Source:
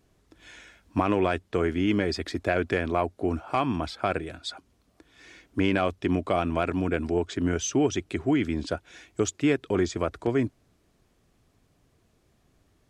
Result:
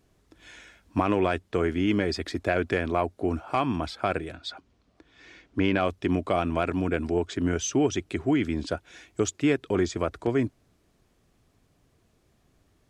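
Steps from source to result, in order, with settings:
0:04.32–0:05.81: low-pass filter 5,300 Hz 12 dB per octave

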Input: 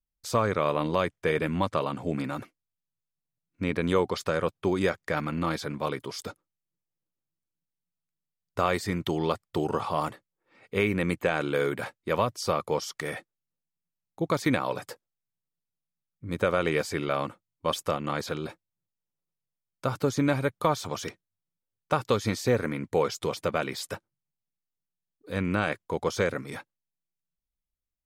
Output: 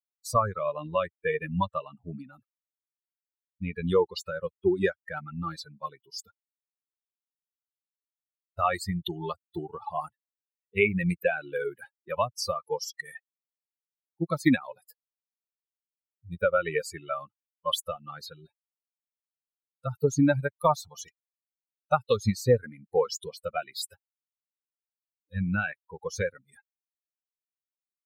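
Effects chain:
spectral dynamics exaggerated over time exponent 3
level +8 dB

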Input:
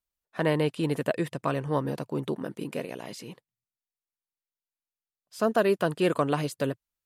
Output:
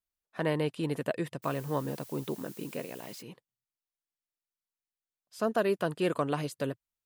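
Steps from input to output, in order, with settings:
0:01.42–0:03.21: background noise blue −47 dBFS
level −4.5 dB

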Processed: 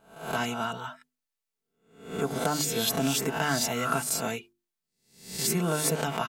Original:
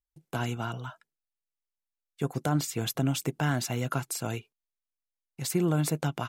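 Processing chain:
peak hold with a rise ahead of every peak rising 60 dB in 0.54 s
low-shelf EQ 290 Hz −5.5 dB
mains-hum notches 50/100/150/200/250/300/350 Hz
comb filter 4.5 ms, depth 55%
level +2 dB

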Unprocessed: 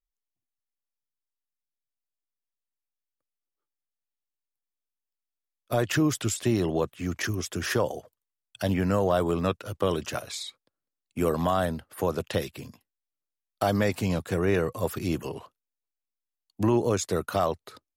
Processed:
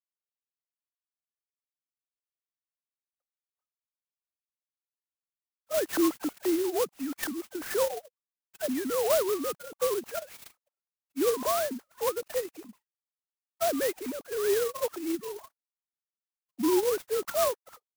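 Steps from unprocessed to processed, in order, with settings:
three sine waves on the formant tracks
converter with an unsteady clock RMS 0.089 ms
level −2.5 dB

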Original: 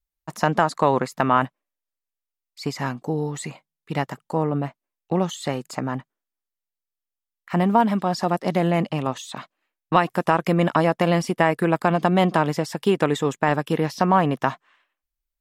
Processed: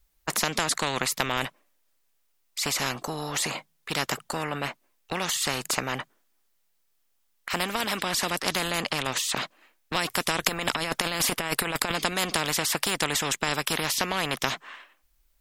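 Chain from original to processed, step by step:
0:10.43–0:11.92: compressor whose output falls as the input rises −23 dBFS, ratio −0.5
every bin compressed towards the loudest bin 4 to 1
level +3 dB

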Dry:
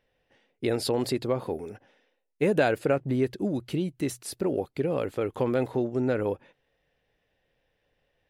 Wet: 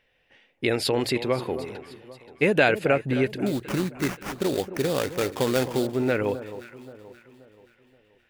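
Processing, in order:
parametric band 2,400 Hz +10 dB 1.4 octaves
0:03.46–0:05.87: sample-rate reduction 4,100 Hz, jitter 20%
delay that swaps between a low-pass and a high-pass 264 ms, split 1,200 Hz, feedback 62%, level −12 dB
level +1.5 dB

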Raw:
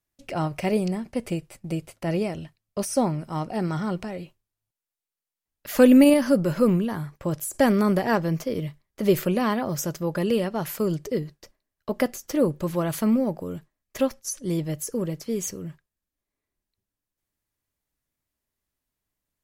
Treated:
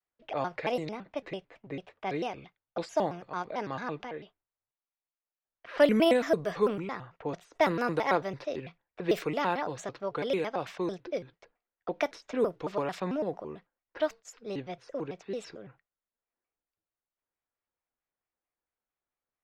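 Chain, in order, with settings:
three-way crossover with the lows and the highs turned down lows −15 dB, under 400 Hz, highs −15 dB, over 5,400 Hz
low-pass that shuts in the quiet parts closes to 1,800 Hz, open at −23 dBFS
pitch modulation by a square or saw wave square 4.5 Hz, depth 250 cents
level −2 dB

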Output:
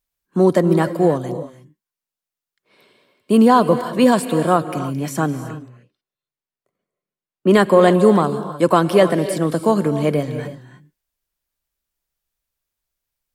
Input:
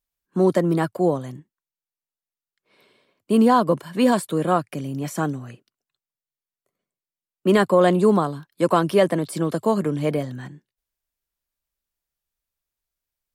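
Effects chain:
0:05.37–0:07.51: high-shelf EQ 3,600 Hz −11 dB
reverb whose tail is shaped and stops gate 340 ms rising, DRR 10.5 dB
level +4 dB

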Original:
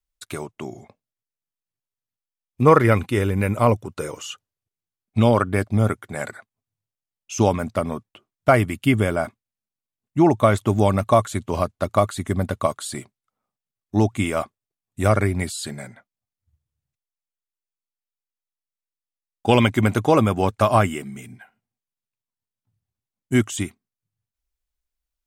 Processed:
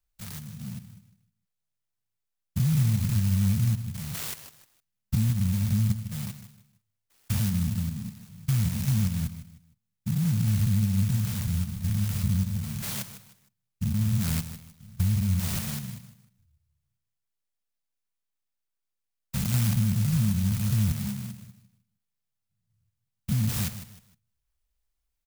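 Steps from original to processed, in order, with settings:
spectrum averaged block by block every 200 ms
Chebyshev band-stop filter 210–2,400 Hz, order 5
in parallel at 0 dB: brickwall limiter −23 dBFS, peak gain reduction 9 dB
on the sum: downward compressor 3 to 1, threshold −22 dBFS, peak gain reduction 5.5 dB
on a send: repeating echo 154 ms, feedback 31%, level −12 dB
on the sum: converter with an unsteady clock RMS 0.13 ms

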